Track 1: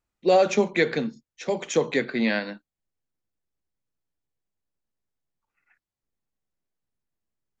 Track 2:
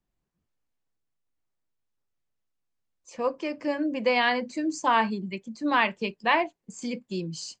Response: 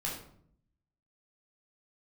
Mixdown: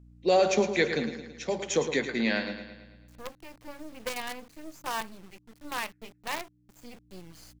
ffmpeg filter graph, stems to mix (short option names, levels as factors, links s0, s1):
-filter_complex "[0:a]lowpass=6600,aemphasis=mode=production:type=50fm,aeval=exprs='val(0)+0.00398*(sin(2*PI*60*n/s)+sin(2*PI*2*60*n/s)/2+sin(2*PI*3*60*n/s)/3+sin(2*PI*4*60*n/s)/4+sin(2*PI*5*60*n/s)/5)':c=same,volume=0.631,asplit=2[s0][s1];[s1]volume=0.316[s2];[1:a]acrusher=bits=4:dc=4:mix=0:aa=0.000001,volume=0.266,asplit=2[s3][s4];[s4]apad=whole_len=335190[s5];[s0][s5]sidechaincompress=threshold=0.00708:ratio=8:attack=16:release=1100[s6];[s2]aecho=0:1:110|220|330|440|550|660|770|880:1|0.54|0.292|0.157|0.085|0.0459|0.0248|0.0134[s7];[s6][s3][s7]amix=inputs=3:normalize=0"